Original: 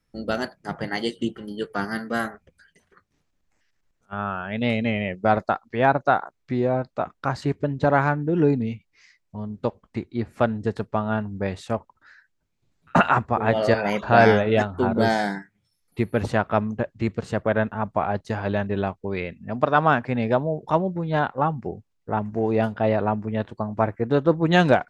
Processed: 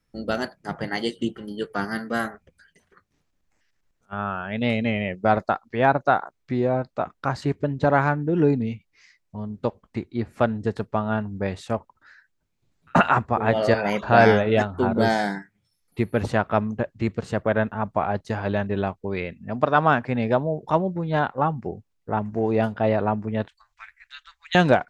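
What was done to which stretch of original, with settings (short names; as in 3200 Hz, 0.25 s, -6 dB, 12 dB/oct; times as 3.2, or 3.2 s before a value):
23.48–24.55 inverse Chebyshev band-stop 140–460 Hz, stop band 80 dB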